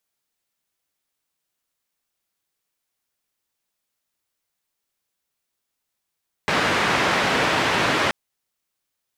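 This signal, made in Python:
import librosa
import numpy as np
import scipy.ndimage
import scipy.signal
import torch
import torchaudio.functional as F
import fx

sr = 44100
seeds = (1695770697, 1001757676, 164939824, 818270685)

y = fx.band_noise(sr, seeds[0], length_s=1.63, low_hz=110.0, high_hz=2100.0, level_db=-20.5)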